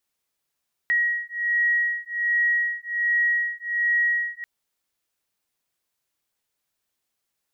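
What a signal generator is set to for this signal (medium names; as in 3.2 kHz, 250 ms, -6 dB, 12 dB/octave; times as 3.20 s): beating tones 1.9 kHz, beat 1.3 Hz, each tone -23.5 dBFS 3.54 s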